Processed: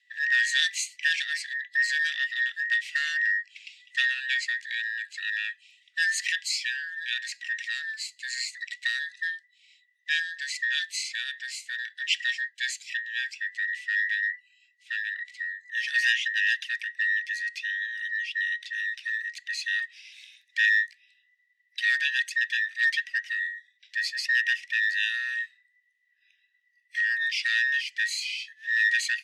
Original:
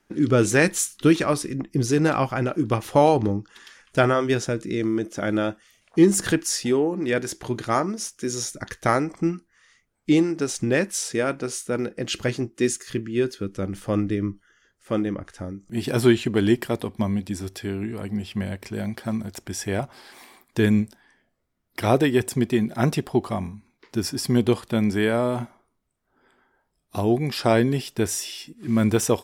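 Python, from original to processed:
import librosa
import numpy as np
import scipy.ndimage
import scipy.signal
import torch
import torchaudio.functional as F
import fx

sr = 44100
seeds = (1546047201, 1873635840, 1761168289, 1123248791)

p1 = fx.band_invert(x, sr, width_hz=2000)
p2 = scipy.signal.sosfilt(scipy.signal.butter(2, 3300.0, 'lowpass', fs=sr, output='sos'), p1)
p3 = 10.0 ** (-12.0 / 20.0) * np.tanh(p2 / 10.0 ** (-12.0 / 20.0))
p4 = p2 + F.gain(torch.from_numpy(p3), -8.5).numpy()
p5 = scipy.signal.sosfilt(scipy.signal.cheby1(6, 3, 1900.0, 'highpass', fs=sr, output='sos'), p4)
y = F.gain(torch.from_numpy(p5), 5.5).numpy()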